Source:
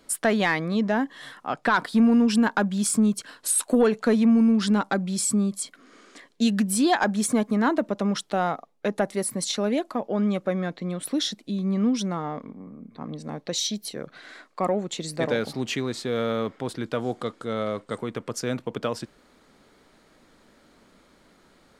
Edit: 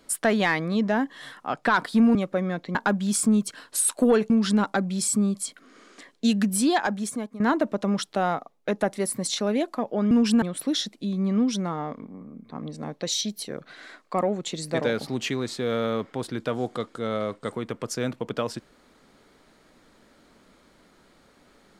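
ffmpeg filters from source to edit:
-filter_complex "[0:a]asplit=7[s0][s1][s2][s3][s4][s5][s6];[s0]atrim=end=2.152[s7];[s1]atrim=start=10.278:end=10.882[s8];[s2]atrim=start=2.458:end=4.012[s9];[s3]atrim=start=4.468:end=7.57,asetpts=PTS-STARTPTS,afade=t=out:st=2.302:d=0.8:silence=0.149624[s10];[s4]atrim=start=7.57:end=10.282,asetpts=PTS-STARTPTS,afade=t=in:d=0.004:c=hsin:silence=0.149624[s11];[s5]atrim=start=2.148:end=2.462[s12];[s6]atrim=start=10.878[s13];[s7][s8]acrossfade=d=0.004:c1=hsin:c2=hsin[s14];[s14][s9]acrossfade=d=0.004:c1=hsin:c2=hsin[s15];[s10][s11]concat=n=2:v=0:a=1[s16];[s15][s16]acrossfade=d=0.004:c1=hsin:c2=hsin[s17];[s17][s12]acrossfade=d=0.004:c1=hsin:c2=hsin[s18];[s18][s13]acrossfade=d=0.004:c1=hsin:c2=hsin"

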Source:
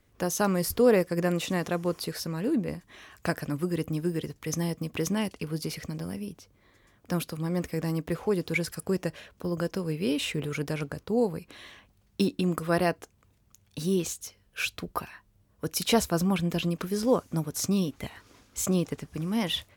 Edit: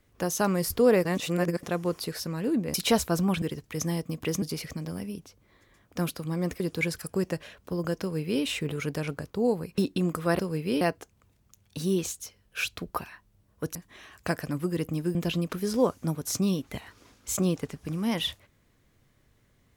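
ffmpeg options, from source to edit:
-filter_complex "[0:a]asplit=12[s0][s1][s2][s3][s4][s5][s6][s7][s8][s9][s10][s11];[s0]atrim=end=1.052[s12];[s1]atrim=start=1.048:end=1.632,asetpts=PTS-STARTPTS,areverse[s13];[s2]atrim=start=1.628:end=2.742[s14];[s3]atrim=start=15.758:end=16.442[s15];[s4]atrim=start=4.138:end=5.142[s16];[s5]atrim=start=5.548:end=7.732[s17];[s6]atrim=start=8.328:end=11.512[s18];[s7]atrim=start=12.208:end=12.822[s19];[s8]atrim=start=9.738:end=10.162[s20];[s9]atrim=start=12.818:end=15.762[s21];[s10]atrim=start=2.738:end=4.142[s22];[s11]atrim=start=16.438[s23];[s12][s13]acrossfade=d=0.004:c1=hsin:c2=hsin[s24];[s24][s14]acrossfade=d=0.004:c1=hsin:c2=hsin[s25];[s25][s15]acrossfade=d=0.004:c1=hsin:c2=hsin[s26];[s26][s16]acrossfade=d=0.004:c1=hsin:c2=hsin[s27];[s27][s17]acrossfade=d=0.004:c1=hsin:c2=hsin[s28];[s28][s18]acrossfade=d=0.004:c1=hsin:c2=hsin[s29];[s29][s19]acrossfade=d=0.004:c1=hsin:c2=hsin[s30];[s30][s20]acrossfade=d=0.004:c1=hsin:c2=hsin[s31];[s31][s21]acrossfade=d=0.004:c1=hsin:c2=hsin[s32];[s32][s22]acrossfade=d=0.004:c1=hsin:c2=hsin[s33];[s33][s23]acrossfade=d=0.004:c1=hsin:c2=hsin"

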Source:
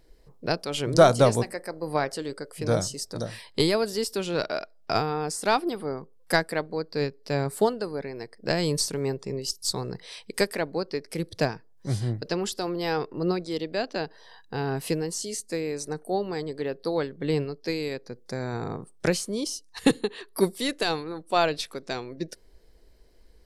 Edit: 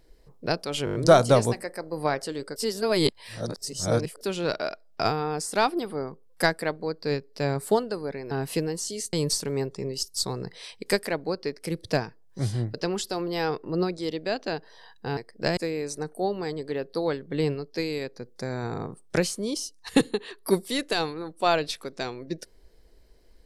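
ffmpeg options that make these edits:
-filter_complex "[0:a]asplit=12[s0][s1][s2][s3][s4][s5][s6][s7][s8][s9][s10][s11];[s0]atrim=end=0.872[s12];[s1]atrim=start=0.848:end=0.872[s13];[s2]atrim=start=0.848:end=0.872[s14];[s3]atrim=start=0.848:end=0.872[s15];[s4]atrim=start=0.848:end=0.872[s16];[s5]atrim=start=0.848:end=2.462[s17];[s6]atrim=start=2.458:end=4.112,asetpts=PTS-STARTPTS,areverse[s18];[s7]atrim=start=4.108:end=8.212[s19];[s8]atrim=start=14.648:end=15.472[s20];[s9]atrim=start=8.608:end=14.652[s21];[s10]atrim=start=8.208:end=8.612[s22];[s11]atrim=start=15.468[s23];[s12][s13]acrossfade=d=0.004:c1=hsin:c2=hsin[s24];[s24][s14]acrossfade=d=0.004:c1=hsin:c2=hsin[s25];[s25][s15]acrossfade=d=0.004:c1=hsin:c2=hsin[s26];[s26][s16]acrossfade=d=0.004:c1=hsin:c2=hsin[s27];[s27][s17]acrossfade=d=0.004:c1=hsin:c2=hsin[s28];[s28][s18]acrossfade=d=0.004:c1=hsin:c2=hsin[s29];[s29][s19]acrossfade=d=0.004:c1=hsin:c2=hsin[s30];[s30][s20]acrossfade=d=0.004:c1=hsin:c2=hsin[s31];[s31][s21]acrossfade=d=0.004:c1=hsin:c2=hsin[s32];[s32][s22]acrossfade=d=0.004:c1=hsin:c2=hsin[s33];[s33][s23]acrossfade=d=0.004:c1=hsin:c2=hsin"

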